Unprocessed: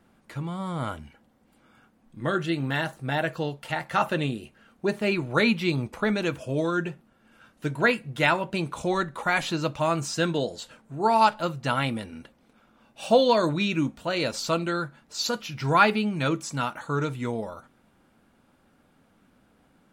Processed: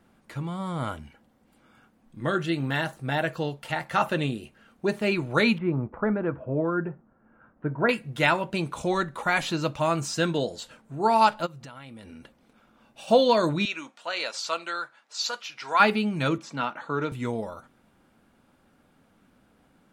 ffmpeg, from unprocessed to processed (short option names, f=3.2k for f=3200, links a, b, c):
-filter_complex "[0:a]asettb=1/sr,asplit=3[a][b][c];[a]atrim=end=5.584[d];[b]atrim=start=5.58:end=7.89,asetpts=PTS-STARTPTS,afade=t=in:d=0.004:c=qsin,afade=t=out:st=2.306:d=0.004:c=qsin,lowpass=f=1.5k:w=0.5412,lowpass=f=1.5k:w=1.3066[e];[c]atrim=start=7.886[f];[d][e]acrossfade=d=0.004:c1=hsin:c2=qsin[g];[g][f]acrossfade=d=0.004:c1=qsin:c2=hsin,asplit=3[h][i][j];[h]afade=t=out:st=11.45:d=0.02[k];[i]acompressor=threshold=-40dB:ratio=12:attack=3.2:release=140:knee=1:detection=peak,afade=t=in:st=11.45:d=0.02,afade=t=out:st=13.07:d=0.02[l];[j]afade=t=in:st=13.07:d=0.02[m];[k][l][m]amix=inputs=3:normalize=0,asettb=1/sr,asplit=3[n][o][p];[n]atrim=end=13.654[q];[o]atrim=start=13.65:end=15.8,asetpts=PTS-STARTPTS,afade=t=in:d=0.004:c=qsin,afade=t=out:st=2.146:d=0.004:c=qsin,highpass=770,lowpass=7.8k[r];[p]atrim=start=15.796[s];[q][r]acrossfade=d=0.004:c1=hsin:c2=qsin[t];[t][s]acrossfade=d=0.004:c1=qsin:c2=hsin,asettb=1/sr,asplit=3[u][v][w];[u]atrim=end=16.384[x];[v]atrim=start=16.38:end=17.12,asetpts=PTS-STARTPTS,afade=t=in:d=0.004:c=qsin,afade=t=out:st=0.736:d=0.004:c=qsin,acrossover=split=160 4700:gain=0.141 1 0.112[y][z][aa];[y][z][aa]amix=inputs=3:normalize=0[ab];[w]atrim=start=17.116[ac];[x][ab]acrossfade=d=0.004:c1=hsin:c2=qsin[ad];[ad][ac]acrossfade=d=0.004:c1=qsin:c2=hsin"